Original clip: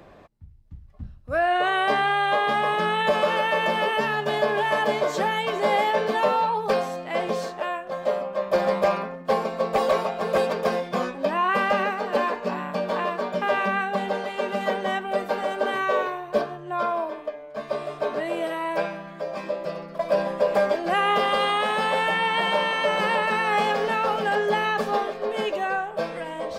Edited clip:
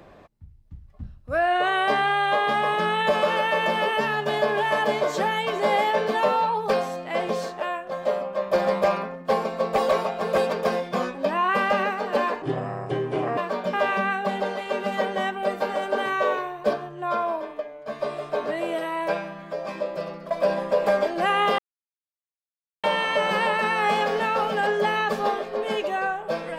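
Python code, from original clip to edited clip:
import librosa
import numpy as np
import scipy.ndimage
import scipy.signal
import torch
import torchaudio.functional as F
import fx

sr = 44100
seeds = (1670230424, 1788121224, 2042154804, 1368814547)

y = fx.edit(x, sr, fx.speed_span(start_s=12.42, length_s=0.64, speed=0.67),
    fx.silence(start_s=21.27, length_s=1.25), tone=tone)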